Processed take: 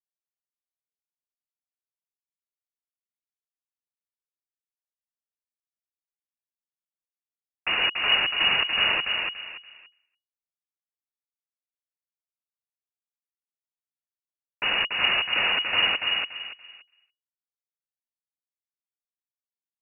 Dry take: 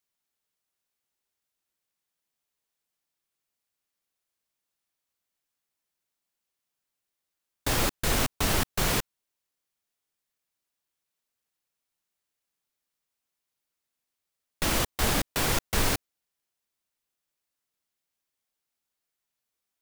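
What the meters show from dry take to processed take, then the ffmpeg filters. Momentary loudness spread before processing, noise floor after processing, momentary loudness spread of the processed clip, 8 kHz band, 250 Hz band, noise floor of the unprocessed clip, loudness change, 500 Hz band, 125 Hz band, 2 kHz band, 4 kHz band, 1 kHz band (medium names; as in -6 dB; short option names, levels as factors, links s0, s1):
5 LU, under -85 dBFS, 14 LU, under -40 dB, -11.5 dB, -85 dBFS, +5.0 dB, -4.5 dB, -17.0 dB, +9.5 dB, +11.5 dB, +1.0 dB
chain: -filter_complex "[0:a]asplit=2[s0][s1];[s1]adelay=286,lowpass=f=2300:p=1,volume=0.708,asplit=2[s2][s3];[s3]adelay=286,lowpass=f=2300:p=1,volume=0.29,asplit=2[s4][s5];[s5]adelay=286,lowpass=f=2300:p=1,volume=0.29,asplit=2[s6][s7];[s7]adelay=286,lowpass=f=2300:p=1,volume=0.29[s8];[s0][s2][s4][s6][s8]amix=inputs=5:normalize=0,agate=range=0.0224:threshold=0.00251:ratio=3:detection=peak,lowpass=f=2500:t=q:w=0.5098,lowpass=f=2500:t=q:w=0.6013,lowpass=f=2500:t=q:w=0.9,lowpass=f=2500:t=q:w=2.563,afreqshift=-2900,volume=1.33"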